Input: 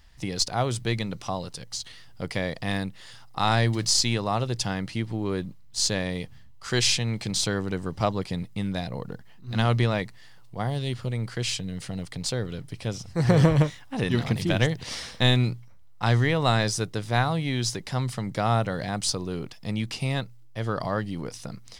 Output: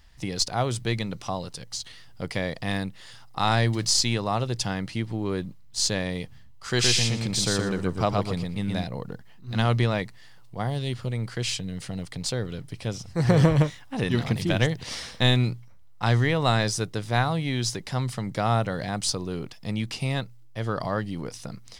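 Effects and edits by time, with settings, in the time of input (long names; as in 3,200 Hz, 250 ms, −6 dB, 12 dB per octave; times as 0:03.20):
0:06.67–0:08.84: repeating echo 119 ms, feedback 17%, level −3 dB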